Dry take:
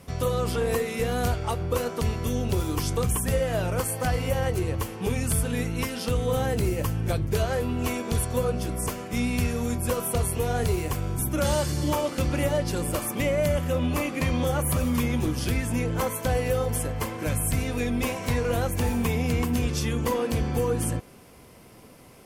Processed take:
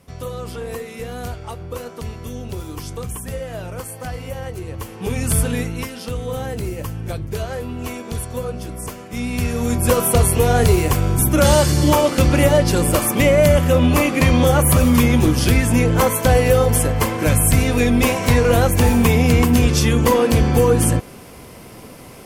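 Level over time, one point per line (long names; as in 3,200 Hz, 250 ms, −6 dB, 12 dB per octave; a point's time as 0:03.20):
0:04.63 −3.5 dB
0:05.41 +8 dB
0:05.94 −0.5 dB
0:09.09 −0.5 dB
0:09.92 +11 dB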